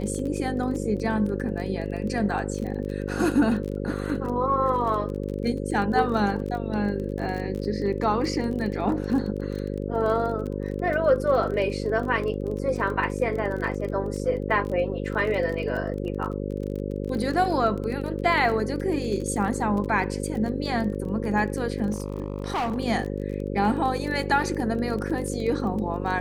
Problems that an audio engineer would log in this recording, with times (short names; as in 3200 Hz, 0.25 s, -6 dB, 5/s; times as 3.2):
buzz 50 Hz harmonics 11 -30 dBFS
crackle 24/s -31 dBFS
21.9–22.78 clipped -23.5 dBFS